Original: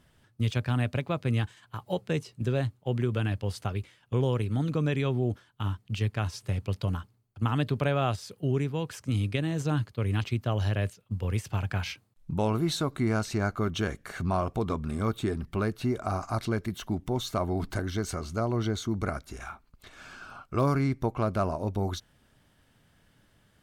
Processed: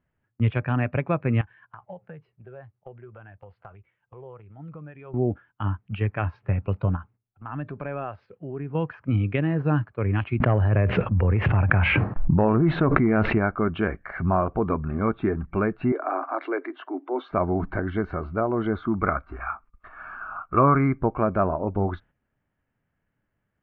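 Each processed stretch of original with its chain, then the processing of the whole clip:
1.41–5.14 s: steep low-pass 8.6 kHz + peaking EQ 260 Hz -8.5 dB 0.36 oct + compression 8:1, threshold -41 dBFS
6.96–8.75 s: compression 2:1, threshold -39 dBFS + transient shaper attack -3 dB, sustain +1 dB
10.40–13.38 s: treble shelf 2.4 kHz -10 dB + hard clipper -19 dBFS + level flattener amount 100%
15.92–17.32 s: steep high-pass 260 Hz 96 dB/octave + transient shaper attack -3 dB, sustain +3 dB
18.72–20.97 s: block-companded coder 7-bit + peaking EQ 1.2 kHz +8.5 dB 0.43 oct
whole clip: steep low-pass 2.5 kHz 36 dB/octave; spectral noise reduction 10 dB; gate -55 dBFS, range -9 dB; trim +6 dB

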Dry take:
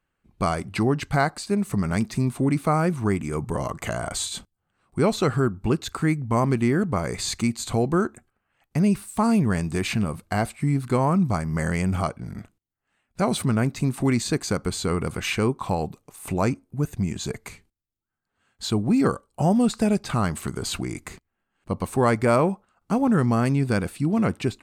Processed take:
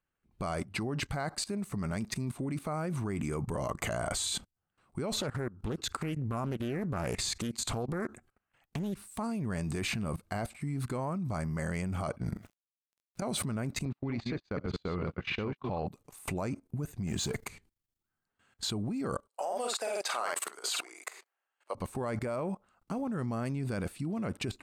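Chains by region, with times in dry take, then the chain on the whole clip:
5.21–9.07 s: compression 5:1, threshold -29 dBFS + loudspeaker Doppler distortion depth 0.59 ms
12.36–13.22 s: word length cut 10-bit, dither none + compression 12:1, threshold -33 dBFS
13.85–15.87 s: chunks repeated in reverse 123 ms, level -6 dB + gate -27 dBFS, range -38 dB + low-pass 4 kHz 24 dB/octave
17.07–17.47 s: companding laws mixed up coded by mu + hard clipper -22.5 dBFS
19.28–21.75 s: high-pass 510 Hz 24 dB/octave + doubling 50 ms -3.5 dB
whole clip: dynamic bell 590 Hz, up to +5 dB, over -42 dBFS, Q 6.9; peak limiter -16 dBFS; level held to a coarse grid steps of 18 dB; trim +2.5 dB

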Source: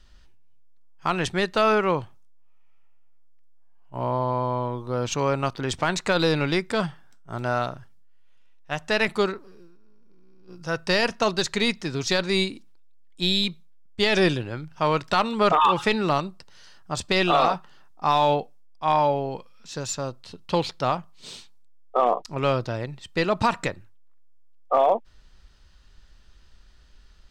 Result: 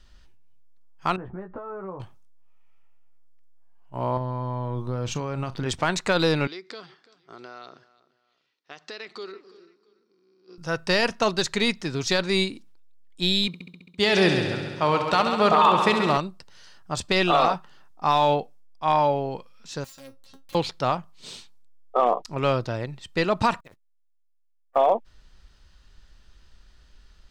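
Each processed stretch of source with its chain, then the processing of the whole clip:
1.16–2.00 s: low-pass 1.3 kHz 24 dB/octave + compression 16:1, threshold -33 dBFS + doubling 16 ms -5 dB
4.17–5.66 s: compression 5:1, threshold -28 dBFS + tone controls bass +7 dB, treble -1 dB + doubling 39 ms -14 dB
6.47–10.58 s: compression, threshold -33 dBFS + cabinet simulation 390–6000 Hz, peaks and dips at 390 Hz +5 dB, 600 Hz -8 dB, 890 Hz -8 dB, 1.6 kHz -4 dB, 2.7 kHz -3 dB, 4.4 kHz +8 dB + feedback delay 338 ms, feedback 31%, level -20 dB
13.47–16.17 s: high-pass 58 Hz + multi-head delay 67 ms, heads first and second, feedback 64%, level -10 dB
19.84–20.55 s: compression 12:1, threshold -32 dBFS + integer overflow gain 29.5 dB + feedback comb 270 Hz, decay 0.17 s, mix 90%
23.60–24.76 s: compression 16:1, threshold -38 dBFS + word length cut 10-bit, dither none + transformer saturation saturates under 850 Hz
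whole clip: none

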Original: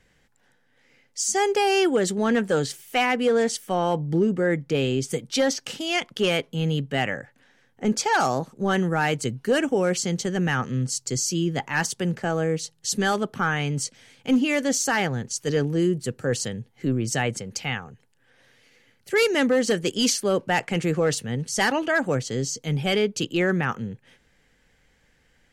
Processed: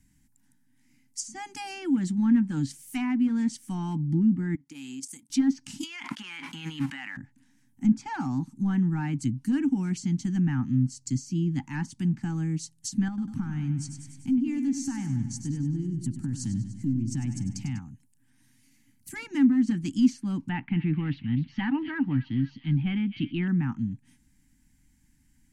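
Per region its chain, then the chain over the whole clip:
4.55–5.30 s: high-pass 530 Hz + level held to a coarse grid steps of 11 dB
5.83–7.17 s: companding laws mixed up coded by mu + high-pass 1.2 kHz + level flattener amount 100%
13.08–17.79 s: tilt EQ -2 dB/octave + compression 5:1, threshold -26 dBFS + feedback delay 98 ms, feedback 59%, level -10 dB
20.49–23.48 s: steep low-pass 3.5 kHz 48 dB/octave + treble shelf 2.6 kHz +9 dB + feedback echo behind a high-pass 253 ms, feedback 55%, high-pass 2.7 kHz, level -8 dB
whole clip: elliptic band-stop 280–980 Hz, stop band 40 dB; low-pass that closes with the level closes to 2.1 kHz, closed at -22 dBFS; FFT filter 170 Hz 0 dB, 670 Hz +10 dB, 1.1 kHz -18 dB, 2.3 kHz -12 dB, 3.3 kHz -15 dB, 9.5 kHz +5 dB; trim +1.5 dB

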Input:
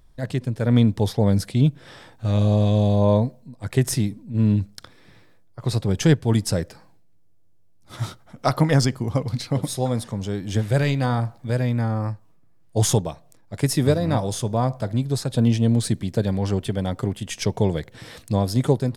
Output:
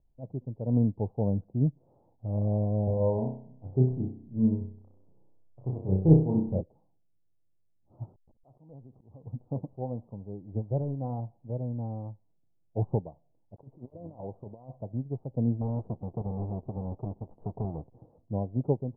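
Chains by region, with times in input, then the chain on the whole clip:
2.84–6.61 s: distance through air 300 m + flutter echo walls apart 5.4 m, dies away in 0.7 s
8.05–9.27 s: send-on-delta sampling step -39 dBFS + compression 5:1, threshold -31 dBFS + slow attack 117 ms
13.55–14.75 s: bass shelf 320 Hz -6.5 dB + compressor with a negative ratio -28 dBFS, ratio -0.5 + small samples zeroed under -40.5 dBFS
15.61–18.06 s: square wave that keeps the level + compression 2.5:1, threshold -20 dBFS
whole clip: steep low-pass 880 Hz 48 dB/octave; upward expansion 1.5:1, over -31 dBFS; trim -4.5 dB

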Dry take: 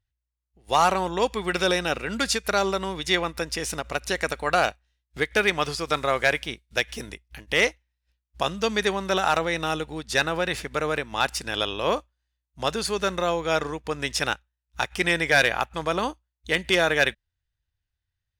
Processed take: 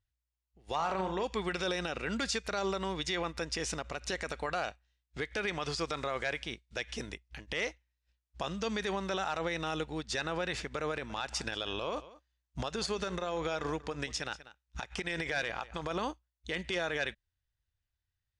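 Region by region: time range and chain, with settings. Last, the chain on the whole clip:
0.75–1.24 s: low-pass 3.5 kHz 6 dB/octave + flutter echo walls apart 6.4 m, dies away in 0.26 s
10.91–15.91 s: transient shaper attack +12 dB, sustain +3 dB + compression, threshold -24 dBFS + delay 188 ms -19.5 dB
whole clip: low-pass 7.9 kHz 24 dB/octave; peak limiter -19.5 dBFS; trim -4 dB

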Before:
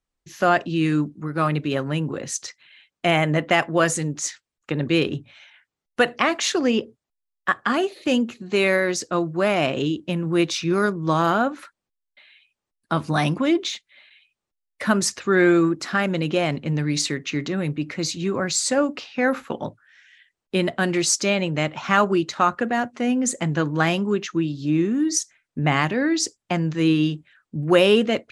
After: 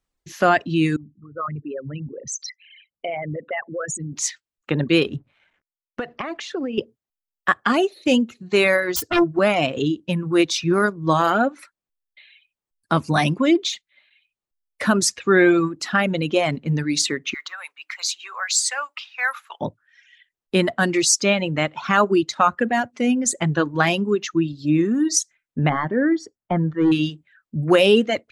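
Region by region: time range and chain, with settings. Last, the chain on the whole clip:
0.96–4.13 s: resonances exaggerated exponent 3 + peaking EQ 350 Hz -10.5 dB 1.1 oct + compression 3:1, threshold -29 dBFS
5.16–6.78 s: compression 16:1, threshold -24 dBFS + hysteresis with a dead band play -48 dBFS + tape spacing loss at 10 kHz 20 dB
8.96–9.39 s: self-modulated delay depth 0.52 ms + peaking EQ 100 Hz +10.5 dB 1.6 oct + comb 2.9 ms, depth 71%
17.34–19.61 s: high-pass 1 kHz 24 dB/octave + companded quantiser 8-bit
25.69–26.92 s: overload inside the chain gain 14 dB + Savitzky-Golay filter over 41 samples
whole clip: reverb removal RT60 1.8 s; loudness maximiser +7 dB; trim -3.5 dB

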